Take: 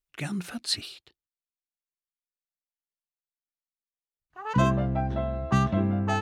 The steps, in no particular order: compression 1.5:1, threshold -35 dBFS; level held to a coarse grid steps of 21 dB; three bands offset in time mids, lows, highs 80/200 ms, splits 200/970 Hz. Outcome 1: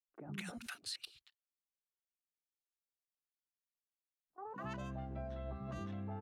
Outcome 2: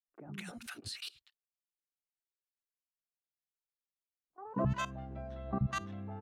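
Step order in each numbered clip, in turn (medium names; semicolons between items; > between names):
compression > level held to a coarse grid > three bands offset in time; level held to a coarse grid > three bands offset in time > compression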